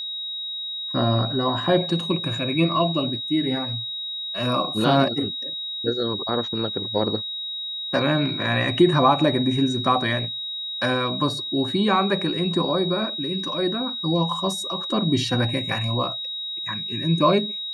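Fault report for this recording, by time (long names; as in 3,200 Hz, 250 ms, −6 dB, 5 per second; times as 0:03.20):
whistle 3,800 Hz −28 dBFS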